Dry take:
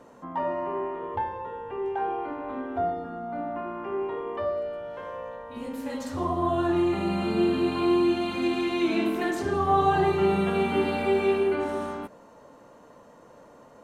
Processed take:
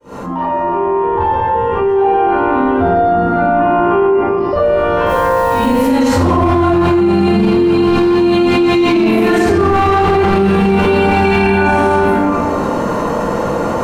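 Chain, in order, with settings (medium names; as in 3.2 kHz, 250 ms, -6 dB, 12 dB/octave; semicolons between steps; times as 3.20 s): fade-in on the opening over 4.58 s; 11.09–11.71 s: comb 1.2 ms, depth 70%; overload inside the chain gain 21 dB; 4.06–4.53 s: band-pass filter 5.1 kHz, Q 17; 5.06–5.77 s: word length cut 10-bit, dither triangular; reverberation RT60 1.4 s, pre-delay 29 ms, DRR -14.5 dB; loudness maximiser +7.5 dB; level flattener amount 70%; trim -5 dB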